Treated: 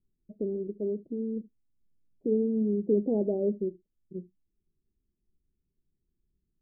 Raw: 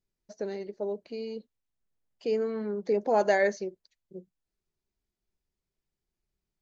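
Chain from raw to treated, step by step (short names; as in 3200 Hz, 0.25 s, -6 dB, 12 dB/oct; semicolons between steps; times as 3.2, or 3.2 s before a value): inverse Chebyshev low-pass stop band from 1600 Hz, stop band 70 dB; on a send: reverb, pre-delay 3 ms, DRR 17 dB; on the sum: gain +8 dB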